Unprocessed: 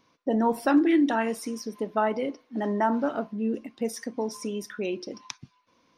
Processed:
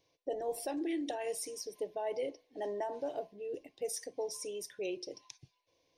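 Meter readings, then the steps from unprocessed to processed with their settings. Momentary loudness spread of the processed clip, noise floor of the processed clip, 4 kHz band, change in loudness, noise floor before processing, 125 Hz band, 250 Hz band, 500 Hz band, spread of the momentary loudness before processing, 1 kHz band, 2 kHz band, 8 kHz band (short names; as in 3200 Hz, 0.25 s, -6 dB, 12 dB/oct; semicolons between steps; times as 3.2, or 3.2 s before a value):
7 LU, -78 dBFS, -5.5 dB, -11.5 dB, -67 dBFS, n/a, -17.0 dB, -7.5 dB, 12 LU, -14.5 dB, -16.0 dB, -0.5 dB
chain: dynamic EQ 9000 Hz, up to +7 dB, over -57 dBFS, Q 0.99; notch 940 Hz, Q 11; limiter -19 dBFS, peak gain reduction 9 dB; fixed phaser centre 540 Hz, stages 4; gain -5 dB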